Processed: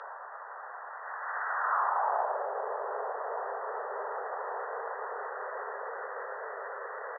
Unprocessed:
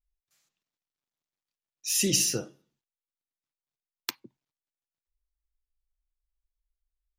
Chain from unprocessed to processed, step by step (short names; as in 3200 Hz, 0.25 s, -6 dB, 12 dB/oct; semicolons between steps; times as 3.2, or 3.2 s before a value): painted sound rise, 5.08–5.88, 380–2000 Hz -17 dBFS; outdoor echo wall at 72 m, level -13 dB; Paulstretch 20×, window 1.00 s, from 5.45; band-pass sweep 3500 Hz -> 490 Hz, 0.91–2.49; gain -8.5 dB